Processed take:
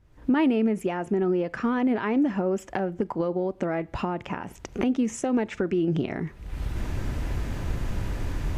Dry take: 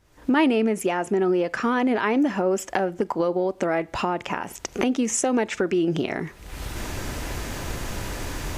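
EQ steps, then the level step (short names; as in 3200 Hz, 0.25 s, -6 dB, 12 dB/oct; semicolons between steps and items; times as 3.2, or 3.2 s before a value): tone controls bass +4 dB, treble -7 dB; low shelf 280 Hz +7 dB; -6.5 dB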